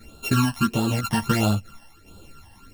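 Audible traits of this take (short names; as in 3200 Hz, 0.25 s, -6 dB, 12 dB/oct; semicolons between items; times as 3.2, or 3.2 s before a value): a buzz of ramps at a fixed pitch in blocks of 32 samples; phasing stages 12, 1.5 Hz, lowest notch 400–2000 Hz; tremolo saw down 0.97 Hz, depth 55%; a shimmering, thickened sound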